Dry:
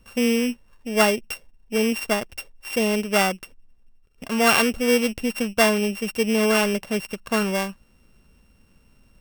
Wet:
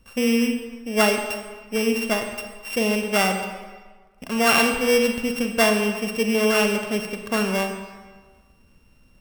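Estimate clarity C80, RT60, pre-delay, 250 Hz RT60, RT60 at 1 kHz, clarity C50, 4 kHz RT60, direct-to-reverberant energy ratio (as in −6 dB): 7.5 dB, 1.4 s, 34 ms, 1.3 s, 1.5 s, 6.0 dB, 1.1 s, 5.0 dB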